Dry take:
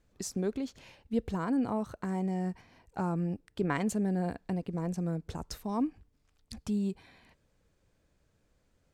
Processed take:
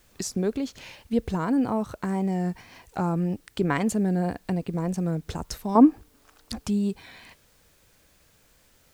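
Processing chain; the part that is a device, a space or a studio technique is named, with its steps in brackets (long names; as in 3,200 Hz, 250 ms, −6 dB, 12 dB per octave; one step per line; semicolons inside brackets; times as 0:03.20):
0:05.75–0:06.66: flat-topped bell 620 Hz +10.5 dB 3 octaves
noise-reduction cassette on a plain deck (one half of a high-frequency compander encoder only; tape wow and flutter; white noise bed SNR 38 dB)
level +6 dB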